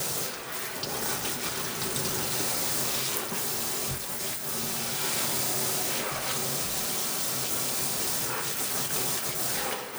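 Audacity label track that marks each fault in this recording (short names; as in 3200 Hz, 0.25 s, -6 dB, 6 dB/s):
3.170000	5.020000	clipped -26 dBFS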